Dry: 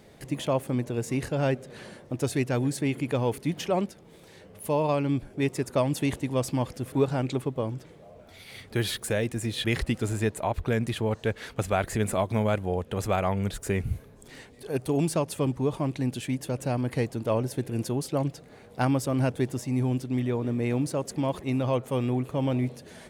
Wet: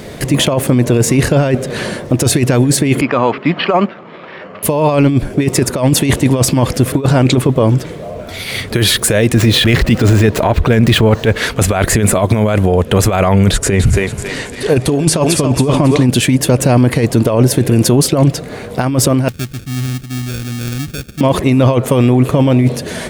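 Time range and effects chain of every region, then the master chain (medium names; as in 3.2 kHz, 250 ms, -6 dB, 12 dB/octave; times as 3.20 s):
3.01–4.63 s: careless resampling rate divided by 6×, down filtered, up hold + cabinet simulation 280–3200 Hz, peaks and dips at 310 Hz -5 dB, 450 Hz -8 dB, 1.2 kHz +8 dB
9.34–11.38 s: median filter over 5 samples + transient shaper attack -11 dB, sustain +3 dB
13.52–16.07 s: low-pass 9.6 kHz + thinning echo 274 ms, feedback 37%, high-pass 440 Hz, level -5.5 dB
19.28–21.21 s: sample-rate reducer 1 kHz + amplifier tone stack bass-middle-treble 6-0-2
whole clip: band-stop 820 Hz, Q 12; compressor with a negative ratio -28 dBFS, ratio -0.5; loudness maximiser +22 dB; trim -1 dB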